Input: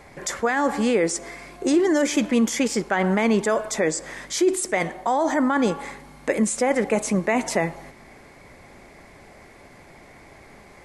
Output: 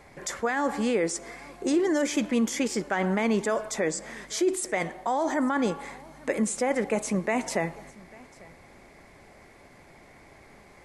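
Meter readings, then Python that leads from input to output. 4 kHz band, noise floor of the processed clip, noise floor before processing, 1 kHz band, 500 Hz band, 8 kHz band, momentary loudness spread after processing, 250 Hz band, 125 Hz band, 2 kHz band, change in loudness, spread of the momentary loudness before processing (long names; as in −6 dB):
−5.0 dB, −53 dBFS, −48 dBFS, −5.0 dB, −5.0 dB, −5.0 dB, 10 LU, −5.0 dB, −5.0 dB, −5.0 dB, −5.0 dB, 10 LU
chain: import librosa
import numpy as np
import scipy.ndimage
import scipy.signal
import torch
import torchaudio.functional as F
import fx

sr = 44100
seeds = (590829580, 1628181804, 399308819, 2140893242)

y = x + 10.0 ** (-23.5 / 20.0) * np.pad(x, (int(846 * sr / 1000.0), 0))[:len(x)]
y = y * 10.0 ** (-5.0 / 20.0)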